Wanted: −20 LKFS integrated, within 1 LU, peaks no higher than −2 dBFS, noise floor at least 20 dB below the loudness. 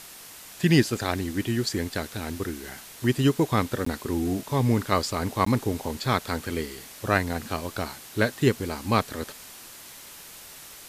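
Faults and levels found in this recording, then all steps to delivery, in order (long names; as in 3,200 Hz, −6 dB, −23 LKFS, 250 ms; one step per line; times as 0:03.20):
number of dropouts 2; longest dropout 14 ms; background noise floor −45 dBFS; target noise floor −47 dBFS; integrated loudness −26.5 LKFS; sample peak −5.0 dBFS; target loudness −20.0 LKFS
→ repair the gap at 0:03.85/0:05.45, 14 ms
noise reduction from a noise print 6 dB
level +6.5 dB
brickwall limiter −2 dBFS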